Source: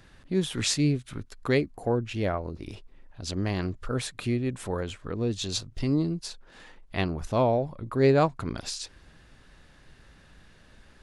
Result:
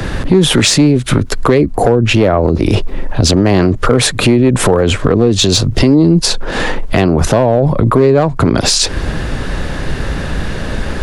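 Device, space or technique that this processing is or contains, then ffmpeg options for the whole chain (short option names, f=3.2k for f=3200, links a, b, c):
mastering chain: -filter_complex "[0:a]equalizer=f=480:t=o:w=0.8:g=2.5,acrossover=split=92|200[a][b][c];[a]acompressor=threshold=-48dB:ratio=4[d];[b]acompressor=threshold=-38dB:ratio=4[e];[c]acompressor=threshold=-25dB:ratio=4[f];[d][e][f]amix=inputs=3:normalize=0,acompressor=threshold=-39dB:ratio=2.5,asoftclip=type=tanh:threshold=-26.5dB,tiltshelf=f=1.2k:g=3.5,asoftclip=type=hard:threshold=-28.5dB,alimiter=level_in=34.5dB:limit=-1dB:release=50:level=0:latency=1,volume=-1dB"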